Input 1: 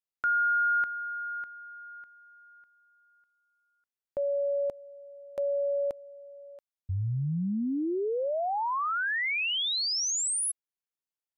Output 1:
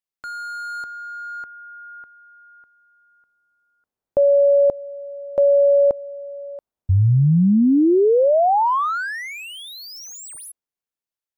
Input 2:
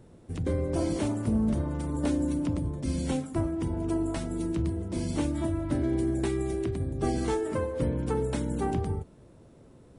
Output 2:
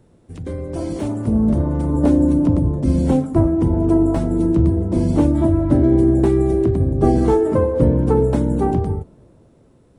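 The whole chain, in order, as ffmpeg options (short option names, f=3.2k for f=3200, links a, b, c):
-filter_complex "[0:a]acrossover=split=1100[a][b];[a]dynaudnorm=f=160:g=17:m=15dB[c];[b]asoftclip=type=hard:threshold=-36.5dB[d];[c][d]amix=inputs=2:normalize=0"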